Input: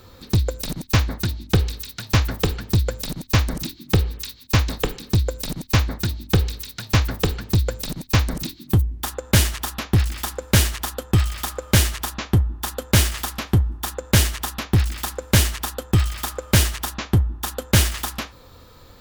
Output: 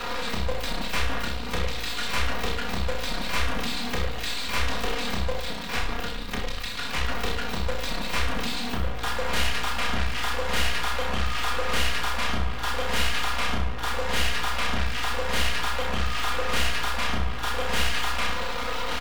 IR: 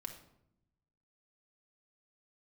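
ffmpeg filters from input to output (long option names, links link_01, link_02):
-filter_complex "[0:a]aeval=exprs='val(0)+0.5*0.0841*sgn(val(0))':channel_layout=same,asettb=1/sr,asplit=3[link_01][link_02][link_03];[link_01]atrim=end=5.404[link_04];[link_02]atrim=start=5.4:end=7,asetpts=PTS-STARTPTS,afade=type=in:duration=0.004:curve=qsin,afade=type=out:start_time=1.596:duration=0.004:curve=qsin,aeval=exprs='val(0)*sin(2*PI*26*n/s)':channel_layout=same[link_05];[link_03]atrim=start=6.996[link_06];[link_04][link_05]acrossfade=duration=0.004:curve1=hsin:curve2=qsin[link_07];[link_07][link_06]acrossfade=duration=0.004:curve1=qsin:curve2=hsin,acrossover=split=590 3800:gain=0.2 1 0.0794[link_08][link_09][link_10];[link_08][link_09][link_10]amix=inputs=3:normalize=0,aecho=1:1:4.2:0.76,bandreject=frequency=97:width_type=h:width=4,bandreject=frequency=194:width_type=h:width=4,bandreject=frequency=291:width_type=h:width=4,bandreject=frequency=388:width_type=h:width=4,bandreject=frequency=485:width_type=h:width=4,bandreject=frequency=582:width_type=h:width=4,bandreject=frequency=679:width_type=h:width=4,bandreject=frequency=776:width_type=h:width=4,bandreject=frequency=873:width_type=h:width=4,bandreject=frequency=970:width_type=h:width=4,bandreject=frequency=1067:width_type=h:width=4,bandreject=frequency=1164:width_type=h:width=4,bandreject=frequency=1261:width_type=h:width=4,bandreject=frequency=1358:width_type=h:width=4,bandreject=frequency=1455:width_type=h:width=4,bandreject=frequency=1552:width_type=h:width=4,bandreject=frequency=1649:width_type=h:width=4,bandreject=frequency=1746:width_type=h:width=4,bandreject=frequency=1843:width_type=h:width=4,bandreject=frequency=1940:width_type=h:width=4,bandreject=frequency=2037:width_type=h:width=4,bandreject=frequency=2134:width_type=h:width=4,bandreject=frequency=2231:width_type=h:width=4,bandreject=frequency=2328:width_type=h:width=4,bandreject=frequency=2425:width_type=h:width=4,bandreject=frequency=2522:width_type=h:width=4,bandreject=frequency=2619:width_type=h:width=4,bandreject=frequency=2716:width_type=h:width=4,bandreject=frequency=2813:width_type=h:width=4,bandreject=frequency=2910:width_type=h:width=4,bandreject=frequency=3007:width_type=h:width=4,bandreject=frequency=3104:width_type=h:width=4,bandreject=frequency=3201:width_type=h:width=4,bandreject=frequency=3298:width_type=h:width=4,bandreject=frequency=3395:width_type=h:width=4,bandreject=frequency=3492:width_type=h:width=4,bandreject=frequency=3589:width_type=h:width=4,bandreject=frequency=3686:width_type=h:width=4,asplit=2[link_11][link_12];[link_12]aecho=0:1:1154:0.237[link_13];[link_11][link_13]amix=inputs=2:normalize=0,aeval=exprs='(tanh(25.1*val(0)+0.8)-tanh(0.8))/25.1':channel_layout=same,aecho=1:1:30|63|99.3|139.2|183.2:0.631|0.398|0.251|0.158|0.1,asplit=2[link_14][link_15];[1:a]atrim=start_sample=2205[link_16];[link_15][link_16]afir=irnorm=-1:irlink=0,volume=-2.5dB[link_17];[link_14][link_17]amix=inputs=2:normalize=0"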